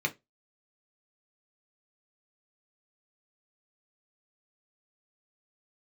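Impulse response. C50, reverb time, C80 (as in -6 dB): 21.5 dB, 0.20 s, 30.5 dB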